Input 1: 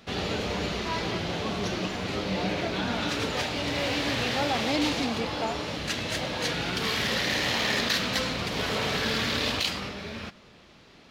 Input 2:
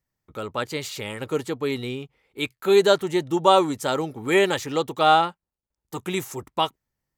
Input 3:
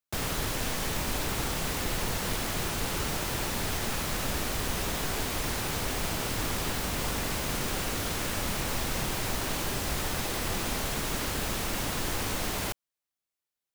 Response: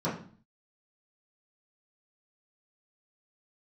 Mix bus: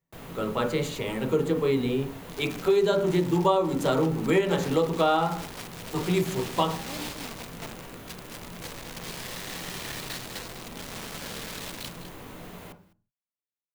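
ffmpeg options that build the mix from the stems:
-filter_complex "[0:a]acrusher=bits=3:mix=0:aa=0.000001,adelay=2200,volume=-12dB,asplit=2[link_01][link_02];[link_02]volume=-10.5dB[link_03];[1:a]volume=-3dB,asplit=2[link_04][link_05];[link_05]volume=-9dB[link_06];[2:a]equalizer=frequency=6900:width=0.63:gain=-7,volume=-12dB,asplit=3[link_07][link_08][link_09];[link_08]volume=-14dB[link_10];[link_09]volume=-22.5dB[link_11];[3:a]atrim=start_sample=2205[link_12];[link_06][link_10]amix=inputs=2:normalize=0[link_13];[link_13][link_12]afir=irnorm=-1:irlink=0[link_14];[link_03][link_11]amix=inputs=2:normalize=0,aecho=0:1:205:1[link_15];[link_01][link_04][link_07][link_14][link_15]amix=inputs=5:normalize=0,acompressor=threshold=-19dB:ratio=6"

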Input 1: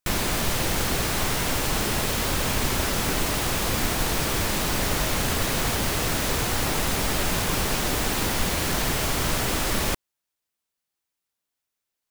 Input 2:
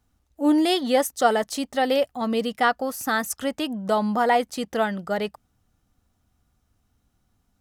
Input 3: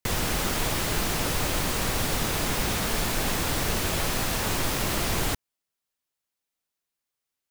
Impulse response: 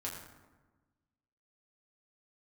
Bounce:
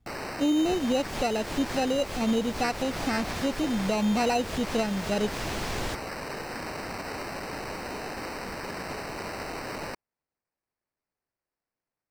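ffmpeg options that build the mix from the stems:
-filter_complex "[0:a]highpass=300,volume=-8dB[link_01];[1:a]lowshelf=frequency=470:gain=11,volume=-5.5dB,asplit=2[link_02][link_03];[2:a]adelay=600,volume=-6dB[link_04];[link_03]apad=whole_len=357484[link_05];[link_04][link_05]sidechaincompress=threshold=-32dB:ratio=8:attack=16:release=135[link_06];[link_01][link_02]amix=inputs=2:normalize=0,acrusher=samples=13:mix=1:aa=0.000001,alimiter=limit=-17.5dB:level=0:latency=1:release=477,volume=0dB[link_07];[link_06][link_07]amix=inputs=2:normalize=0,acrossover=split=7500[link_08][link_09];[link_09]acompressor=threshold=-49dB:ratio=4:attack=1:release=60[link_10];[link_08][link_10]amix=inputs=2:normalize=0,equalizer=frequency=1300:width=2:gain=-3"

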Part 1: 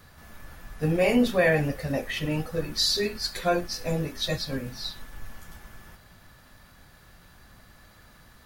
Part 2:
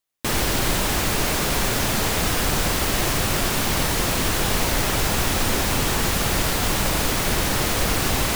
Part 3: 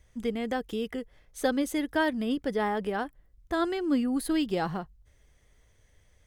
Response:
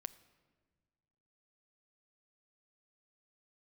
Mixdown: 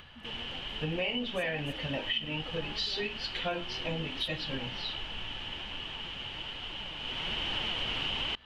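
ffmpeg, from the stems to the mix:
-filter_complex "[0:a]volume=-5.5dB[link_01];[1:a]flanger=delay=2.3:depth=6.2:regen=61:speed=1.2:shape=triangular,volume=-9.5dB,afade=type=in:start_time=6.98:duration=0.62:silence=0.281838[link_02];[2:a]acompressor=threshold=-38dB:ratio=2.5,volume=-14dB[link_03];[link_01][link_02]amix=inputs=2:normalize=0,lowpass=frequency=3000:width_type=q:width=14,acompressor=threshold=-30dB:ratio=6,volume=0dB[link_04];[link_03][link_04]amix=inputs=2:normalize=0,equalizer=frequency=890:width_type=o:width=0.2:gain=6.5,acompressor=mode=upward:threshold=-48dB:ratio=2.5"

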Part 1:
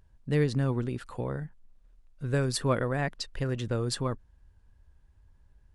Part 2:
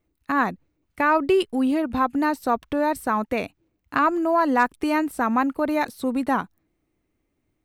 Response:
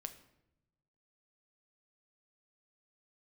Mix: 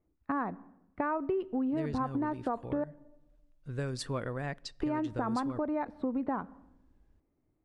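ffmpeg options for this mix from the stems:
-filter_complex "[0:a]lowpass=8700,adelay=1450,volume=-8dB,asplit=2[link_01][link_02];[link_02]volume=-12dB[link_03];[1:a]lowpass=1200,volume=-5dB,asplit=3[link_04][link_05][link_06];[link_04]atrim=end=2.84,asetpts=PTS-STARTPTS,afade=type=out:start_time=2.836:duration=0.004:curve=hsin[link_07];[link_05]atrim=start=2.84:end=4.81,asetpts=PTS-STARTPTS,volume=0[link_08];[link_06]atrim=start=4.81,asetpts=PTS-STARTPTS,afade=type=in:duration=0.004:curve=hsin[link_09];[link_07][link_08][link_09]concat=n=3:v=0:a=1,asplit=2[link_10][link_11];[link_11]volume=-6.5dB[link_12];[2:a]atrim=start_sample=2205[link_13];[link_03][link_12]amix=inputs=2:normalize=0[link_14];[link_14][link_13]afir=irnorm=-1:irlink=0[link_15];[link_01][link_10][link_15]amix=inputs=3:normalize=0,acompressor=threshold=-29dB:ratio=6"

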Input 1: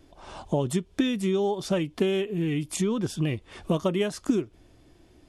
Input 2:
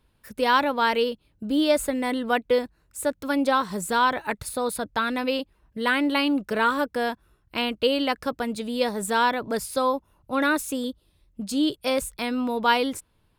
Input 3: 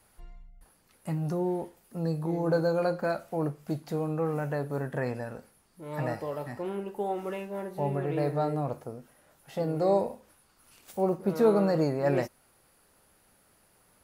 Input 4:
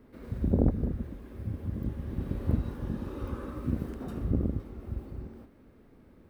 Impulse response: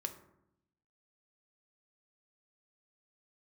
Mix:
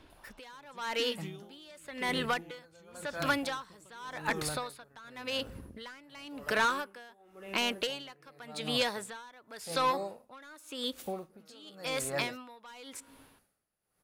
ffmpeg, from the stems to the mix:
-filter_complex "[0:a]lowpass=5900,volume=-4dB[link_01];[1:a]highshelf=frequency=6200:gain=-6.5,asplit=2[link_02][link_03];[link_03]highpass=frequency=720:poles=1,volume=17dB,asoftclip=type=tanh:threshold=-6dB[link_04];[link_02][link_04]amix=inputs=2:normalize=0,lowpass=frequency=5400:poles=1,volume=-6dB,volume=0.5dB,asplit=2[link_05][link_06];[link_06]volume=-15dB[link_07];[2:a]bandreject=frequency=960:width=12,adelay=100,volume=1.5dB[link_08];[3:a]acompressor=threshold=-34dB:ratio=6,adelay=1250,volume=-3.5dB[link_09];[4:a]atrim=start_sample=2205[link_10];[link_07][link_10]afir=irnorm=-1:irlink=0[link_11];[link_01][link_05][link_08][link_09][link_11]amix=inputs=5:normalize=0,acrossover=split=1100|6000[link_12][link_13][link_14];[link_12]acompressor=threshold=-34dB:ratio=4[link_15];[link_13]acompressor=threshold=-30dB:ratio=4[link_16];[link_14]acompressor=threshold=-37dB:ratio=4[link_17];[link_15][link_16][link_17]amix=inputs=3:normalize=0,aeval=exprs='val(0)*pow(10,-25*(0.5-0.5*cos(2*PI*0.91*n/s))/20)':channel_layout=same"

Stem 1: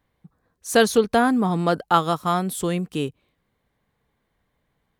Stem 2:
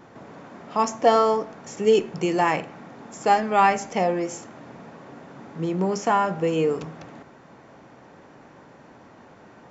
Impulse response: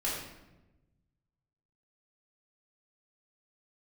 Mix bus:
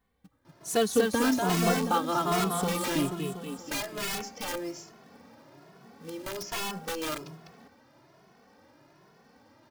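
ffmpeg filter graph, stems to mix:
-filter_complex "[0:a]equalizer=frequency=280:width_type=o:width=0.23:gain=7,acompressor=threshold=-28dB:ratio=1.5,volume=-1dB,asplit=2[link_01][link_02];[link_02]volume=-3.5dB[link_03];[1:a]asoftclip=type=tanh:threshold=-10dB,lowpass=frequency=5100:width_type=q:width=3.7,aeval=exprs='(mod(7.08*val(0)+1,2)-1)/7.08':channel_layout=same,adelay=450,volume=-8dB[link_04];[link_03]aecho=0:1:241|482|723|964|1205|1446|1687|1928|2169:1|0.57|0.325|0.185|0.106|0.0602|0.0343|0.0195|0.0111[link_05];[link_01][link_04][link_05]amix=inputs=3:normalize=0,acrusher=bits=4:mode=log:mix=0:aa=0.000001,asplit=2[link_06][link_07];[link_07]adelay=2.3,afreqshift=1.2[link_08];[link_06][link_08]amix=inputs=2:normalize=1"

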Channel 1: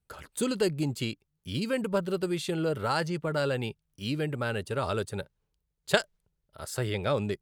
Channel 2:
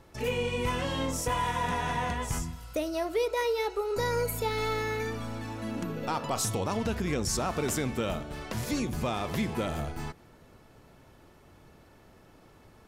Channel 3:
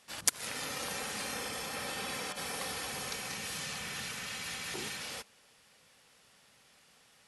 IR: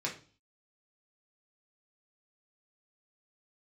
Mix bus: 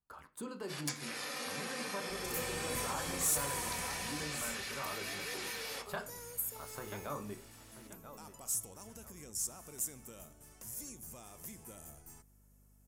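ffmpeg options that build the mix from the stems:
-filter_complex "[0:a]equalizer=frequency=125:width_type=o:width=1:gain=-6,equalizer=frequency=250:width_type=o:width=1:gain=4,equalizer=frequency=500:width_type=o:width=1:gain=-6,equalizer=frequency=1000:width_type=o:width=1:gain=11,equalizer=frequency=2000:width_type=o:width=1:gain=-4,equalizer=frequency=4000:width_type=o:width=1:gain=-6,equalizer=frequency=8000:width_type=o:width=1:gain=-3,volume=-11.5dB,asplit=3[link_01][link_02][link_03];[link_02]volume=-9.5dB[link_04];[link_03]volume=-14.5dB[link_05];[1:a]aeval=exprs='val(0)+0.00891*(sin(2*PI*50*n/s)+sin(2*PI*2*50*n/s)/2+sin(2*PI*3*50*n/s)/3+sin(2*PI*4*50*n/s)/4+sin(2*PI*5*50*n/s)/5)':channel_layout=same,aexciter=amount=13.1:drive=5.3:freq=6000,adelay=2100,volume=-13dB,afade=type=out:start_time=3.76:duration=0.64:silence=0.316228[link_06];[2:a]highpass=250,adelay=600,volume=-1dB,asplit=2[link_07][link_08];[link_08]volume=-8dB[link_09];[link_01][link_07]amix=inputs=2:normalize=0,acompressor=threshold=-44dB:ratio=6,volume=0dB[link_10];[3:a]atrim=start_sample=2205[link_11];[link_04][link_09]amix=inputs=2:normalize=0[link_12];[link_12][link_11]afir=irnorm=-1:irlink=0[link_13];[link_05]aecho=0:1:984|1968|2952|3936:1|0.29|0.0841|0.0244[link_14];[link_06][link_10][link_13][link_14]amix=inputs=4:normalize=0,asoftclip=type=tanh:threshold=-25dB"

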